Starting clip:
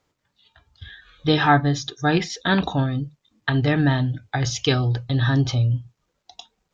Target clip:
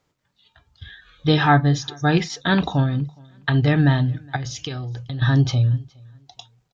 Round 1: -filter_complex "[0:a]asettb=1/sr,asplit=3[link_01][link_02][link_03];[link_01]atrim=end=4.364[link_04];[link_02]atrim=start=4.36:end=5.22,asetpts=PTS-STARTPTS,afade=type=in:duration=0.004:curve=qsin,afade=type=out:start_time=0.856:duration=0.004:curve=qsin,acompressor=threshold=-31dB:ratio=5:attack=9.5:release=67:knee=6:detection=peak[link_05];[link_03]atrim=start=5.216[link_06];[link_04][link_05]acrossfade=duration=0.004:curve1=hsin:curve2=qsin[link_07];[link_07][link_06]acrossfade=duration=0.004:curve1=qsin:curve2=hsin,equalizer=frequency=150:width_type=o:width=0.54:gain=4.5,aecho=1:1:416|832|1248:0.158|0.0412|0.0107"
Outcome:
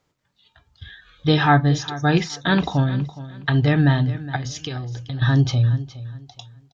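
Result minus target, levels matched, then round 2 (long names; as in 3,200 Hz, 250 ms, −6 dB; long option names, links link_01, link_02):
echo-to-direct +11.5 dB
-filter_complex "[0:a]asettb=1/sr,asplit=3[link_01][link_02][link_03];[link_01]atrim=end=4.364[link_04];[link_02]atrim=start=4.36:end=5.22,asetpts=PTS-STARTPTS,afade=type=in:duration=0.004:curve=qsin,afade=type=out:start_time=0.856:duration=0.004:curve=qsin,acompressor=threshold=-31dB:ratio=5:attack=9.5:release=67:knee=6:detection=peak[link_05];[link_03]atrim=start=5.216[link_06];[link_04][link_05]acrossfade=duration=0.004:curve1=hsin:curve2=qsin[link_07];[link_07][link_06]acrossfade=duration=0.004:curve1=qsin:curve2=hsin,equalizer=frequency=150:width_type=o:width=0.54:gain=4.5,aecho=1:1:416|832:0.0422|0.011"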